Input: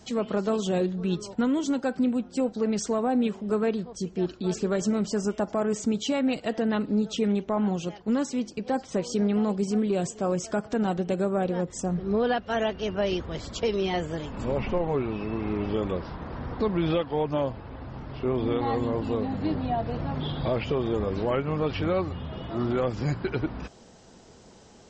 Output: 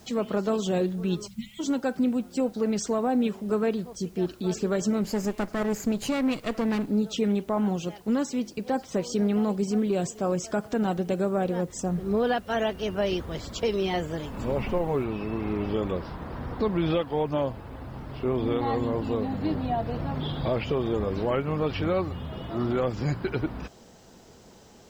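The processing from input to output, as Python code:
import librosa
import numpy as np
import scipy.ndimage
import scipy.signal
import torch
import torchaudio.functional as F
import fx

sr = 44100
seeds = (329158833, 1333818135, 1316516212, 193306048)

y = fx.spec_erase(x, sr, start_s=1.27, length_s=0.33, low_hz=230.0, high_hz=1900.0)
y = fx.lower_of_two(y, sr, delay_ms=0.42, at=(5.02, 6.88), fade=0.02)
y = fx.noise_floor_step(y, sr, seeds[0], at_s=15.04, before_db=-62, after_db=-70, tilt_db=0.0)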